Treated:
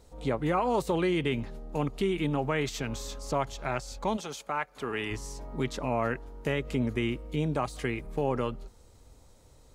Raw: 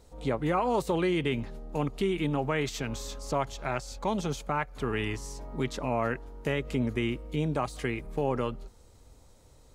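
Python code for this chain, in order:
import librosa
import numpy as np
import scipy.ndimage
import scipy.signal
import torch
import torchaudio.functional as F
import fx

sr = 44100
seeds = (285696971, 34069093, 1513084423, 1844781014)

y = fx.highpass(x, sr, hz=fx.line((4.16, 890.0), (5.1, 260.0)), slope=6, at=(4.16, 5.1), fade=0.02)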